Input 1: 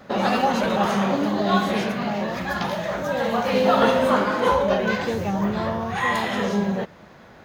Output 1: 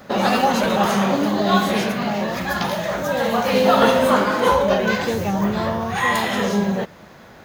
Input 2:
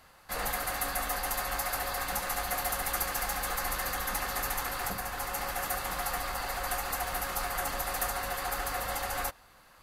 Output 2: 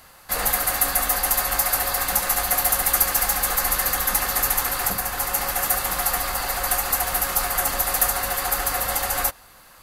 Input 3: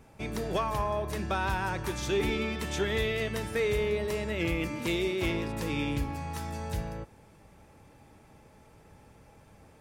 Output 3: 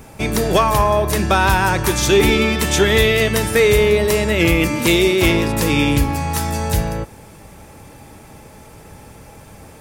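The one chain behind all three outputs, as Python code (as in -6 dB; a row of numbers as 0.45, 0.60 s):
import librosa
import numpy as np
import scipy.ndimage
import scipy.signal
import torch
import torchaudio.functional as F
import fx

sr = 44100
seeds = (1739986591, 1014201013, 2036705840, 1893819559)

y = fx.high_shelf(x, sr, hz=6700.0, db=9.5)
y = y * 10.0 ** (-3 / 20.0) / np.max(np.abs(y))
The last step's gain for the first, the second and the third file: +3.0, +7.0, +15.0 dB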